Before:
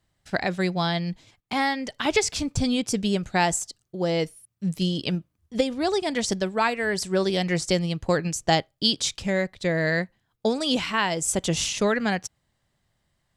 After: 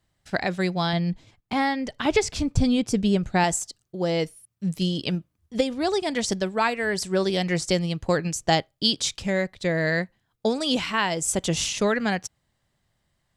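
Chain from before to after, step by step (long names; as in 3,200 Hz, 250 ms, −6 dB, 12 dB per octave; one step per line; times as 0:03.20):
0:00.93–0:03.44: spectral tilt −1.5 dB per octave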